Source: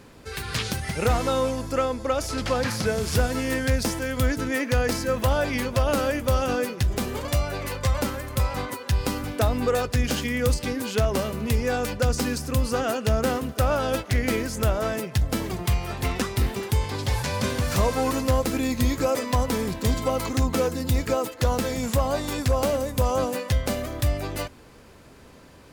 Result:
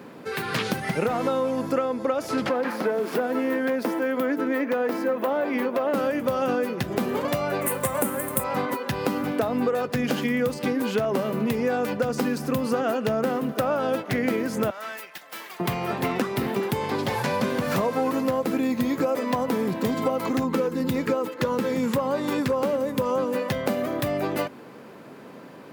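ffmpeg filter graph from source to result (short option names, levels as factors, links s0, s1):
-filter_complex "[0:a]asettb=1/sr,asplit=3[s0][s1][s2];[s0]atrim=end=2.494[s3];[s1]atrim=start=2.49:end=5.94,asetpts=PTS-STARTPTS,afade=t=in:d=0.004:c=qsin,afade=t=out:st=3.446:d=0.004:c=qsin,highpass=f=250:w=0.5412,highpass=f=250:w=1.3066,aeval=exprs='clip(val(0),-1,0.0596)':c=same,equalizer=f=6600:w=0.48:g=-10[s4];[s2]atrim=start=5.936[s5];[s3][s4]acrossfade=d=0.004:c1=hsin:c2=qsin[s6];[s6][s5]acrossfade=d=0.004:c1=qsin:c2=hsin,asettb=1/sr,asplit=3[s7][s8][s9];[s7]atrim=end=7.614[s10];[s8]atrim=start=7.61:end=8.44,asetpts=PTS-STARTPTS,afade=t=in:d=0.004:c=qsin,afade=t=out:st=0.826:d=0.004:c=qsin,highshelf=f=6800:t=q:w=3:g=12,acrusher=bits=6:mix=0:aa=0.5[s11];[s9]atrim=start=8.436[s12];[s10][s11]acrossfade=d=0.004:c1=hsin:c2=qsin[s13];[s13][s12]acrossfade=d=0.004:c1=qsin:c2=hsin,asettb=1/sr,asplit=3[s14][s15][s16];[s14]atrim=end=14.704[s17];[s15]atrim=start=14.7:end=15.6,asetpts=PTS-STARTPTS,afade=t=in:d=0.004:c=qsin,afade=t=out:st=0.896:d=0.004:c=qsin,highpass=1500,aeval=exprs='(tanh(50.1*val(0)+0.45)-tanh(0.45))/50.1':c=same[s18];[s16]atrim=start=15.596[s19];[s17][s18]acrossfade=d=0.004:c1=hsin:c2=qsin[s20];[s20][s19]acrossfade=d=0.004:c1=qsin:c2=hsin,asettb=1/sr,asplit=3[s21][s22][s23];[s21]atrim=end=20.444[s24];[s22]atrim=start=20.44:end=23.42,asetpts=PTS-STARTPTS,afade=t=in:d=0.004:c=qsin,afade=t=out:st=2.976:d=0.004:c=qsin,asuperstop=centerf=700:order=4:qfactor=4.1,highshelf=f=11000:g=-5[s25];[s23]atrim=start=23.416[s26];[s24][s25]acrossfade=d=0.004:c1=hsin:c2=qsin[s27];[s27][s26]acrossfade=d=0.004:c1=qsin:c2=hsin,highpass=f=160:w=0.5412,highpass=f=160:w=1.3066,equalizer=f=7300:t=o:w=2.4:g=-13,acompressor=threshold=0.0355:ratio=6,volume=2.51"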